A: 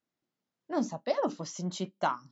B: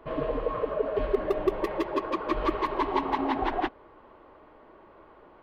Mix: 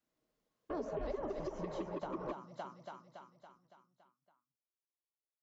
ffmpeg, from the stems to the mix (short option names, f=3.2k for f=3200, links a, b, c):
-filter_complex "[0:a]acrossover=split=560|3200[a][b][c];[a]acompressor=threshold=-38dB:ratio=4[d];[b]acompressor=threshold=-31dB:ratio=4[e];[c]acompressor=threshold=-56dB:ratio=4[f];[d][e][f]amix=inputs=3:normalize=0,volume=0dB,asplit=3[g][h][i];[h]volume=-6.5dB[j];[1:a]lowpass=3.2k,volume=-5dB[k];[i]apad=whole_len=239075[l];[k][l]sidechaingate=range=-54dB:threshold=-53dB:ratio=16:detection=peak[m];[j]aecho=0:1:281|562|843|1124|1405|1686|1967|2248:1|0.56|0.314|0.176|0.0983|0.0551|0.0308|0.0173[n];[g][m][n]amix=inputs=3:normalize=0,acrossover=split=470|1000[o][p][q];[o]acompressor=threshold=-33dB:ratio=4[r];[p]acompressor=threshold=-40dB:ratio=4[s];[q]acompressor=threshold=-51dB:ratio=4[t];[r][s][t]amix=inputs=3:normalize=0,alimiter=level_in=6dB:limit=-24dB:level=0:latency=1:release=328,volume=-6dB"